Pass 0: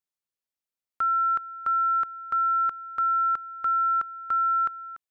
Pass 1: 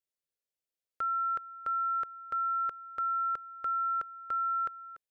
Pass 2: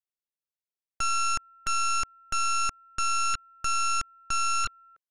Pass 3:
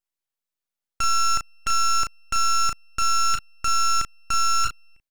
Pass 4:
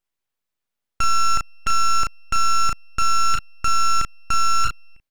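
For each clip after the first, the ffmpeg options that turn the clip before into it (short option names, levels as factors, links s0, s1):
-af "equalizer=f=250:t=o:w=1:g=-4,equalizer=f=500:t=o:w=1:g=8,equalizer=f=1000:t=o:w=1:g=-9,volume=0.708"
-af "afwtdn=0.02,aeval=exprs='0.0473*(cos(1*acos(clip(val(0)/0.0473,-1,1)))-cos(1*PI/2))+0.0211*(cos(4*acos(clip(val(0)/0.0473,-1,1)))-cos(4*PI/2))+0.0188*(cos(7*acos(clip(val(0)/0.0473,-1,1)))-cos(7*PI/2))':c=same,volume=1.26"
-filter_complex "[0:a]aeval=exprs='abs(val(0))':c=same,asplit=2[s0][s1];[s1]adelay=35,volume=0.473[s2];[s0][s2]amix=inputs=2:normalize=0,volume=1.68"
-filter_complex "[0:a]bass=f=250:g=3,treble=f=4000:g=-5,asplit=2[s0][s1];[s1]alimiter=limit=0.112:level=0:latency=1:release=23,volume=0.944[s2];[s0][s2]amix=inputs=2:normalize=0"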